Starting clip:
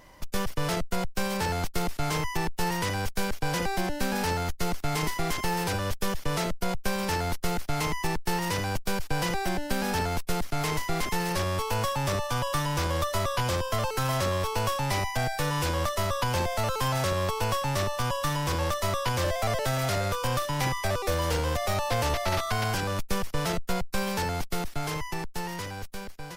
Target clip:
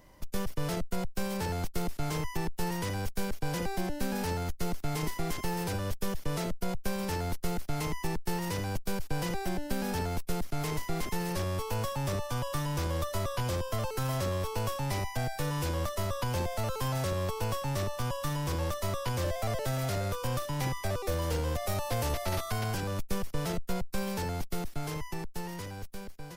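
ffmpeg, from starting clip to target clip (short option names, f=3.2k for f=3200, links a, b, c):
-filter_complex "[0:a]asettb=1/sr,asplit=3[a][b][c];[a]atrim=end=21.664[d];[b]atrim=start=21.66:end=22.59,asetpts=PTS-STARTPTS,afade=t=in:d=0.004:c=qsin,afade=t=out:st=0.926:d=0.004:c=qsin,equalizer=f=12k:t=o:w=1.2:g=5[e];[c]atrim=start=22.586[f];[d][e]acrossfade=d=0.004:c1=hsin:c2=qsin[g];[g][f]acrossfade=d=0.004:c1=qsin:c2=hsin,acrossover=split=570[h][i];[h]acontrast=54[j];[j][i]amix=inputs=2:normalize=0,highshelf=f=8.2k:g=6,volume=-8.5dB"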